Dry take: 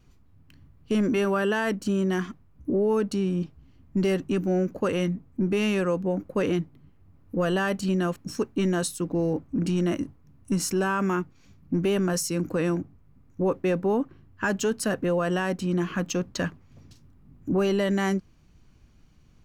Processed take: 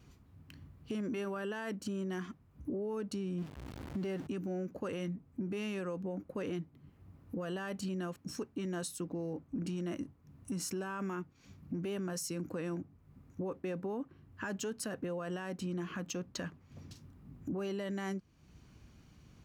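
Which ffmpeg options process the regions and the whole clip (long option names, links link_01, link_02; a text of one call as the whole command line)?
ffmpeg -i in.wav -filter_complex "[0:a]asettb=1/sr,asplit=3[link_01][link_02][link_03];[link_01]atrim=end=3.384[link_04];[link_02]atrim=start=3.38:end=4.27,asetpts=PTS-STARTPTS,afade=type=in:duration=0.004:curve=qsin,afade=type=out:start_time=0.886:duration=0.004:curve=qsin,aeval=exprs='val(0)+0.5*0.02*sgn(val(0))':channel_layout=same,highshelf=frequency=4600:gain=-8[link_05];[link_03]atrim=start=4.266[link_06];[link_04][link_05]acrossfade=duration=0.004:curve1=hsin:curve2=qsin[link_07];[link_07][link_06]acrossfade=duration=0.004:curve1=qsin:curve2=hsin,highpass=58,alimiter=limit=-20dB:level=0:latency=1,acompressor=threshold=-47dB:ratio=2,volume=1.5dB" out.wav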